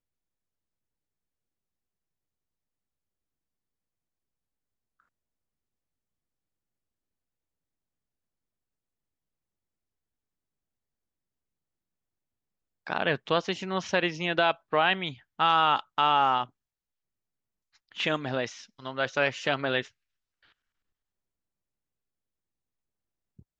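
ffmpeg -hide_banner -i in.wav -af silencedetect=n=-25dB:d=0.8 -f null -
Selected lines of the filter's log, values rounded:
silence_start: 0.00
silence_end: 12.90 | silence_duration: 12.90
silence_start: 16.43
silence_end: 18.00 | silence_duration: 1.56
silence_start: 19.81
silence_end: 23.60 | silence_duration: 3.79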